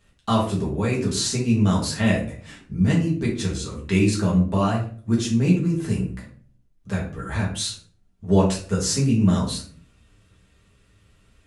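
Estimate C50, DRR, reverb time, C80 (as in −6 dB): 6.5 dB, −4.5 dB, 0.45 s, 11.5 dB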